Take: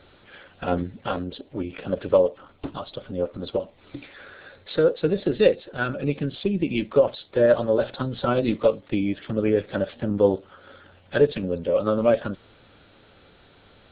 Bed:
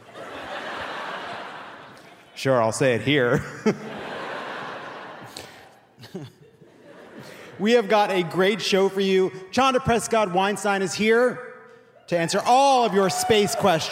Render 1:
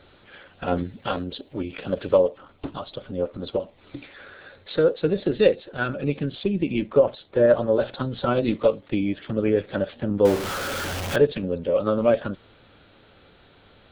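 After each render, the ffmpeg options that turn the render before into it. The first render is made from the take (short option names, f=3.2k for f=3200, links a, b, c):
-filter_complex "[0:a]asettb=1/sr,asplit=3[a][b][c];[a]atrim=end=0.754[d];[b]atrim=start=0.75:end=2.15,asetpts=PTS-STARTPTS,afade=t=in:d=0.004:c=qsin,afade=t=out:st=1.396:d=0.004:c=qsin,highshelf=f=4.1k:g=10[e];[c]atrim=start=2.146[f];[d][e]acrossfade=d=0.004:c1=hsin:c2=qsin[g];[g][f]acrossfade=d=0.004:c1=qsin:c2=hsin,asettb=1/sr,asplit=3[h][i][j];[h]atrim=end=6.724[k];[i]atrim=start=6.72:end=7.74,asetpts=PTS-STARTPTS,afade=t=in:d=0.004:c=qsin,afade=t=out:st=1.016:d=0.004:c=qsin,aemphasis=mode=reproduction:type=75fm[l];[j]atrim=start=7.736[m];[k][l]acrossfade=d=0.004:c1=hsin:c2=qsin[n];[n][m]acrossfade=d=0.004:c1=qsin:c2=hsin,asettb=1/sr,asplit=3[o][p][q];[o]atrim=end=10.254[r];[p]atrim=start=10.25:end=11.16,asetpts=PTS-STARTPTS,afade=t=in:d=0.004:c=qsin,afade=t=out:st=0.906:d=0.004:c=qsin,aeval=exprs='val(0)+0.5*0.0668*sgn(val(0))':c=same[s];[q]atrim=start=11.156[t];[r][s]acrossfade=d=0.004:c1=hsin:c2=qsin[u];[u][t]acrossfade=d=0.004:c1=qsin:c2=hsin"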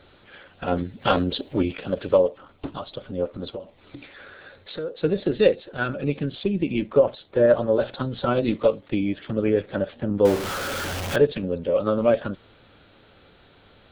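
-filter_complex "[0:a]asettb=1/sr,asplit=3[a][b][c];[a]atrim=end=1.014[d];[b]atrim=start=1.01:end=1.73,asetpts=PTS-STARTPTS,afade=t=in:d=0.004:c=qsin,afade=t=out:st=0.716:d=0.004:c=qsin,acontrast=86[e];[c]atrim=start=1.726[f];[d][e]acrossfade=d=0.004:c1=hsin:c2=qsin[g];[g][f]acrossfade=d=0.004:c1=qsin:c2=hsin,asettb=1/sr,asplit=3[h][i][j];[h]atrim=end=3.534[k];[i]atrim=start=3.53:end=5.02,asetpts=PTS-STARTPTS,afade=t=in:d=0.004:c=qsin,afade=t=out:st=1.486:d=0.004:c=qsin,acompressor=threshold=-36dB:ratio=2:attack=3.2:release=140:knee=1:detection=peak[l];[j]atrim=start=5.016[m];[k][l]acrossfade=d=0.004:c1=hsin:c2=qsin[n];[n][m]acrossfade=d=0.004:c1=qsin:c2=hsin,asettb=1/sr,asplit=3[o][p][q];[o]atrim=end=9.624[r];[p]atrim=start=9.62:end=10.15,asetpts=PTS-STARTPTS,afade=t=in:d=0.004:c=qsin,afade=t=out:st=0.526:d=0.004:c=qsin,highshelf=f=3.5k:g=-7[s];[q]atrim=start=10.146[t];[r][s]acrossfade=d=0.004:c1=hsin:c2=qsin[u];[u][t]acrossfade=d=0.004:c1=qsin:c2=hsin"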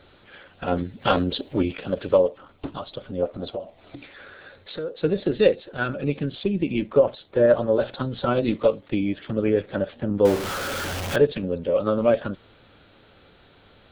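-filter_complex "[0:a]asettb=1/sr,asplit=3[a][b][c];[a]atrim=end=3.224[d];[b]atrim=start=3.22:end=3.96,asetpts=PTS-STARTPTS,afade=t=in:d=0.004:c=qsin,afade=t=out:st=0.736:d=0.004:c=qsin,equalizer=f=680:w=4.2:g=12[e];[c]atrim=start=3.956[f];[d][e]acrossfade=d=0.004:c1=hsin:c2=qsin[g];[g][f]acrossfade=d=0.004:c1=qsin:c2=hsin"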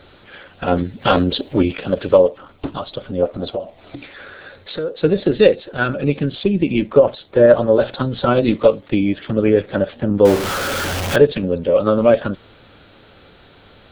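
-af "volume=7dB,alimiter=limit=-1dB:level=0:latency=1"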